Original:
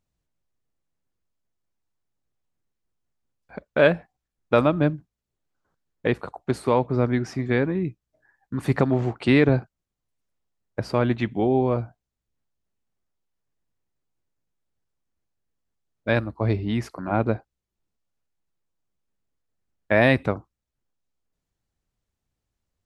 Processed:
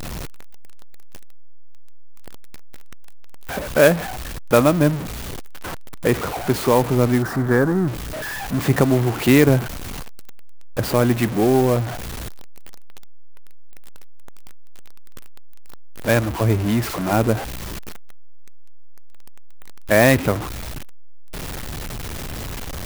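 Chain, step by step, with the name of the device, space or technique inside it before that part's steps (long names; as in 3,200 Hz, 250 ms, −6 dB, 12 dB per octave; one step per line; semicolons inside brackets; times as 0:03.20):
early CD player with a faulty converter (converter with a step at zero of −25.5 dBFS; converter with an unsteady clock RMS 0.035 ms)
0:07.22–0:07.88: high shelf with overshoot 1,900 Hz −7 dB, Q 3
level +3 dB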